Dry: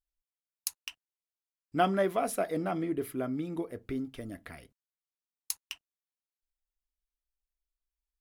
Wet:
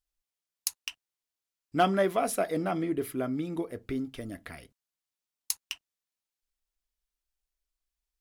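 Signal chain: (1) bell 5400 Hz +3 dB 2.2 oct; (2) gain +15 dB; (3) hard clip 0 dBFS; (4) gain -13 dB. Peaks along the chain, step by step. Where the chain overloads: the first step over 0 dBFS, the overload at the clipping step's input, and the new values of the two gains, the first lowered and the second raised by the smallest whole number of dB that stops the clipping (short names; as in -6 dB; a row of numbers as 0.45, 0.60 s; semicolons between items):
-10.5, +4.5, 0.0, -13.0 dBFS; step 2, 4.5 dB; step 2 +10 dB, step 4 -8 dB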